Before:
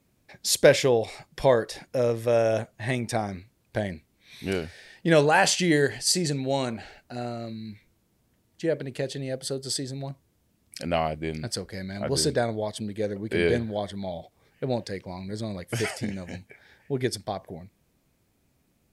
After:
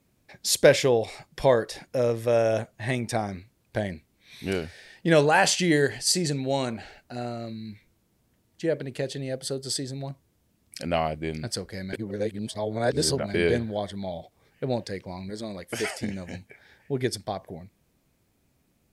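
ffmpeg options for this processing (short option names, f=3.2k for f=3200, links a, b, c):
-filter_complex "[0:a]asettb=1/sr,asplit=3[a][b][c];[a]atrim=end=15.304[d];[b]atrim=start=15.3:end=16.03,asetpts=PTS-STARTPTS,afade=t=in:d=0.004:c=qsin,afade=t=out:st=0.726:d=0.004:c=qsin,equalizer=f=120:t=o:w=0.77:g=-13[e];[c]atrim=start=16.026[f];[d][e]acrossfade=d=0.004:c1=hsin:c2=qsin[g];[g][f]acrossfade=d=0.004:c1=qsin:c2=hsin,asplit=3[h][i][j];[h]atrim=end=11.932[k];[i]atrim=start=11.928:end=13.342,asetpts=PTS-STARTPTS,areverse[l];[j]atrim=start=13.338[m];[k][l]acrossfade=d=0.004:c1=hsin:c2=hsin[n];[n][m]acrossfade=d=0.004:c1=hsin:c2=hsin"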